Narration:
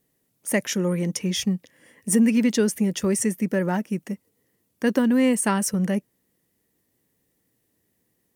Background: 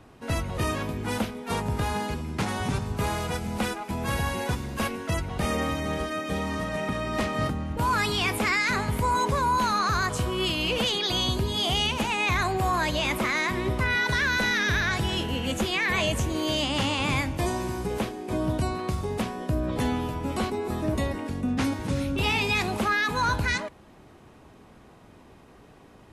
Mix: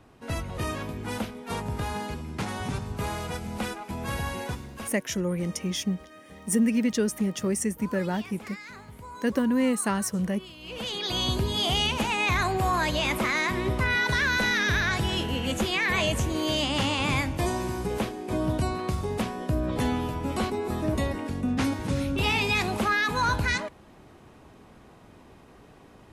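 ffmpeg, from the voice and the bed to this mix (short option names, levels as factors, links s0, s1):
-filter_complex "[0:a]adelay=4400,volume=0.596[s0];[1:a]volume=5.62,afade=t=out:st=4.37:d=0.67:silence=0.177828,afade=t=in:st=10.61:d=0.73:silence=0.11885[s1];[s0][s1]amix=inputs=2:normalize=0"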